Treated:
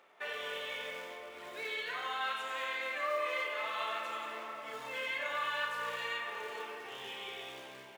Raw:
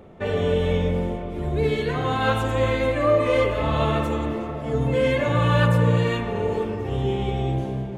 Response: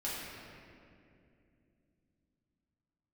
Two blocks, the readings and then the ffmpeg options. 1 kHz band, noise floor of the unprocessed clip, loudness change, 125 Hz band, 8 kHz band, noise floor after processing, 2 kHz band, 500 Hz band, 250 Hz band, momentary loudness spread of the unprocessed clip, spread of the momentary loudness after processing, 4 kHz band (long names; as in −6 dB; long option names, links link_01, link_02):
−11.0 dB, −31 dBFS, −15.0 dB, below −40 dB, can't be measured, −50 dBFS, −6.5 dB, −20.0 dB, −32.5 dB, 8 LU, 9 LU, −6.5 dB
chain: -filter_complex "[0:a]acrusher=bits=7:mode=log:mix=0:aa=0.000001,highpass=1500,acompressor=threshold=-36dB:ratio=2,lowpass=frequency=2800:poles=1,aecho=1:1:32.07|90.38:0.398|0.282,asplit=2[link_01][link_02];[1:a]atrim=start_sample=2205[link_03];[link_02][link_03]afir=irnorm=-1:irlink=0,volume=-10.5dB[link_04];[link_01][link_04]amix=inputs=2:normalize=0,volume=-2dB"